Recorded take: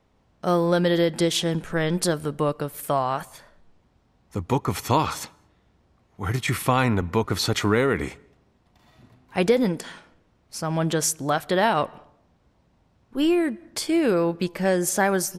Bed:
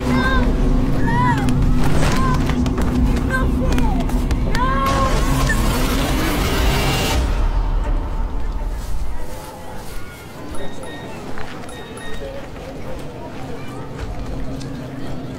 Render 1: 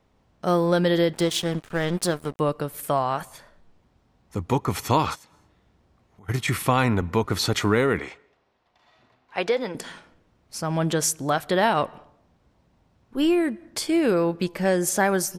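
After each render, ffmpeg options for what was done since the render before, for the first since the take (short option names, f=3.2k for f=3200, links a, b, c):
-filter_complex "[0:a]asettb=1/sr,asplit=3[a][b][c];[a]atrim=end=1.134[d];[b]atrim=start=1.13:end=2.4,asetpts=PTS-STARTPTS,afade=t=in:d=0.004:c=qsin,afade=t=out:st=1.266:d=0.004:c=qsin,aeval=exprs='sgn(val(0))*max(abs(val(0))-0.0158,0)':c=same[e];[c]atrim=start=2.396[f];[d][e]acrossfade=d=0.004:c1=hsin:c2=qsin[g];[g][f]acrossfade=d=0.004:c1=qsin:c2=hsin,asplit=3[h][i][j];[h]afade=t=out:st=5.14:d=0.02[k];[i]acompressor=threshold=-47dB:ratio=16:attack=3.2:release=140:knee=1:detection=peak,afade=t=in:st=5.14:d=0.02,afade=t=out:st=6.28:d=0.02[l];[j]afade=t=in:st=6.28:d=0.02[m];[k][l][m]amix=inputs=3:normalize=0,asettb=1/sr,asplit=3[n][o][p];[n]atrim=end=7.994[q];[o]atrim=start=7.99:end=9.75,asetpts=PTS-STARTPTS,afade=t=in:d=0.004:c=qsin,afade=t=out:st=1.756:d=0.004:c=qsin,acrossover=split=430 5900:gain=0.178 1 0.141[r][s][t];[r][s][t]amix=inputs=3:normalize=0[u];[p]atrim=start=9.746[v];[q][u]acrossfade=d=0.004:c1=hsin:c2=qsin[w];[w][v]acrossfade=d=0.004:c1=qsin:c2=hsin"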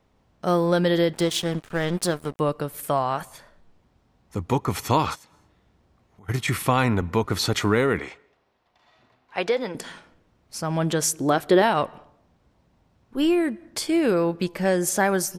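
-filter_complex "[0:a]asettb=1/sr,asplit=3[a][b][c];[a]atrim=end=11.134[d];[b]atrim=start=11.13:end=11.62,asetpts=PTS-STARTPTS,afade=t=in:d=0.004:c=qsin,afade=t=out:st=0.486:d=0.004:c=qsin,equalizer=f=350:w=1.5:g=9[e];[c]atrim=start=11.616[f];[d][e]acrossfade=d=0.004:c1=hsin:c2=qsin[g];[g][f]acrossfade=d=0.004:c1=qsin:c2=hsin"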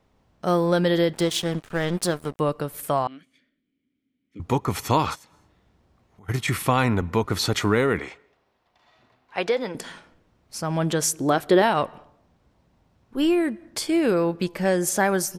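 -filter_complex "[0:a]asettb=1/sr,asplit=3[a][b][c];[a]atrim=end=3.074[d];[b]atrim=start=3.07:end=4.4,asetpts=PTS-STARTPTS,afade=t=in:d=0.004:c=qsin,afade=t=out:st=1.326:d=0.004:c=qsin,asplit=3[e][f][g];[e]bandpass=f=270:t=q:w=8,volume=0dB[h];[f]bandpass=f=2.29k:t=q:w=8,volume=-6dB[i];[g]bandpass=f=3.01k:t=q:w=8,volume=-9dB[j];[h][i][j]amix=inputs=3:normalize=0[k];[c]atrim=start=4.396[l];[d][k]acrossfade=d=0.004:c1=hsin:c2=qsin[m];[m][l]acrossfade=d=0.004:c1=qsin:c2=hsin"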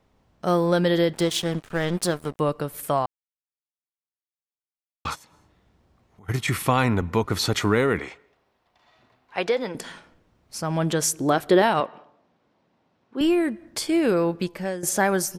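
-filter_complex "[0:a]asettb=1/sr,asplit=3[a][b][c];[a]atrim=end=11.804[d];[b]atrim=start=11.8:end=13.21,asetpts=PTS-STARTPTS,afade=t=in:d=0.004:c=qsin,afade=t=out:st=1.406:d=0.004:c=qsin,highpass=220,lowpass=4.8k[e];[c]atrim=start=13.206[f];[d][e]acrossfade=d=0.004:c1=hsin:c2=qsin[g];[g][f]acrossfade=d=0.004:c1=qsin:c2=hsin,asplit=4[h][i][j][k];[h]atrim=end=3.06,asetpts=PTS-STARTPTS,afade=t=out:st=3.056:d=0.004:c=hsin[l];[i]atrim=start=3.06:end=5.05,asetpts=PTS-STARTPTS,volume=0[m];[j]atrim=start=5.05:end=14.83,asetpts=PTS-STARTPTS,afade=t=in:d=0.004:c=hsin,afade=t=out:st=9.3:d=0.48:silence=0.211349[n];[k]atrim=start=14.83,asetpts=PTS-STARTPTS,afade=t=in:d=0.004:c=hsin:silence=0.211349[o];[l][m][n][o]concat=n=4:v=0:a=1"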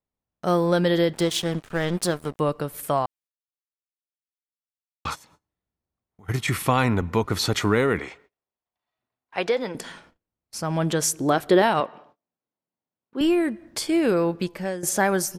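-af "agate=range=-26dB:threshold=-53dB:ratio=16:detection=peak"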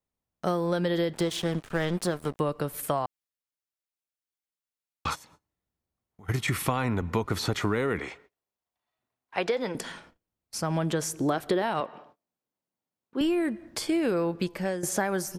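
-filter_complex "[0:a]acrossover=split=570|2100[a][b][c];[c]alimiter=limit=-22.5dB:level=0:latency=1:release=122[d];[a][b][d]amix=inputs=3:normalize=0,acompressor=threshold=-23dB:ratio=6"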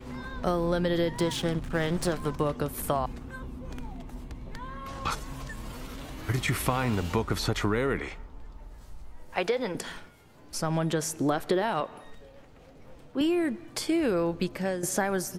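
-filter_complex "[1:a]volume=-22dB[a];[0:a][a]amix=inputs=2:normalize=0"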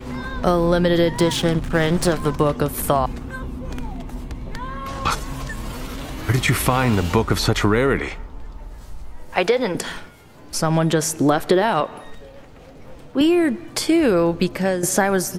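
-af "volume=9.5dB,alimiter=limit=-3dB:level=0:latency=1"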